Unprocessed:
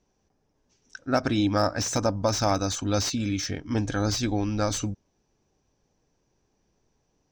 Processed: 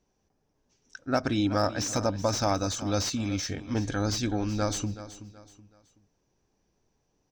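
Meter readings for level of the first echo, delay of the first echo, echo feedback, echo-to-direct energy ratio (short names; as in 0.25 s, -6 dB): -14.5 dB, 0.376 s, 34%, -14.0 dB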